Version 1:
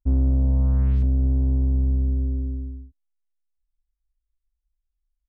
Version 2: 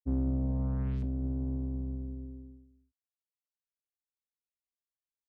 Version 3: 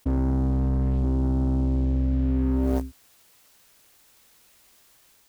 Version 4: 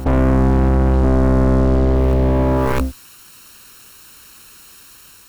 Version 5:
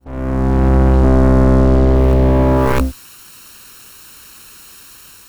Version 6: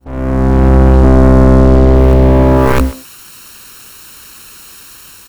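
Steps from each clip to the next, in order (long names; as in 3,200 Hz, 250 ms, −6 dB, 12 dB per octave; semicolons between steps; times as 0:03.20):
low-pass that shuts in the quiet parts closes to 480 Hz, open at −16.5 dBFS; high-pass filter 110 Hz 12 dB per octave; expander for the loud parts 2.5 to 1, over −38 dBFS; level −3 dB
automatic gain control gain up to 3 dB; leveller curve on the samples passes 3; envelope flattener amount 100%; level +1 dB
lower of the sound and its delayed copy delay 0.72 ms; sine wavefolder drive 12 dB, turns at −11.5 dBFS; backwards echo 668 ms −13.5 dB
fade in at the beginning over 0.76 s; level +3.5 dB
far-end echo of a speakerphone 130 ms, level −13 dB; level +4.5 dB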